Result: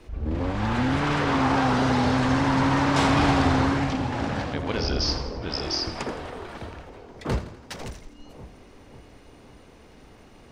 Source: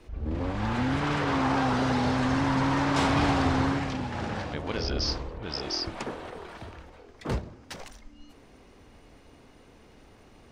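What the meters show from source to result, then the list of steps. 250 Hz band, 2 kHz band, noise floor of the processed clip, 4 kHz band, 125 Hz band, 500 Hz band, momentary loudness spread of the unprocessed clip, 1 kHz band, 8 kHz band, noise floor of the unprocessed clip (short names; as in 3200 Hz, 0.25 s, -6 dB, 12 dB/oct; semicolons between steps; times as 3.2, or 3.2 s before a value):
+4.0 dB, +4.0 dB, -50 dBFS, +4.0 dB, +4.0 dB, +4.0 dB, 17 LU, +4.0 dB, +4.0 dB, -55 dBFS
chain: split-band echo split 970 Hz, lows 0.547 s, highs 83 ms, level -12 dB; gain +3.5 dB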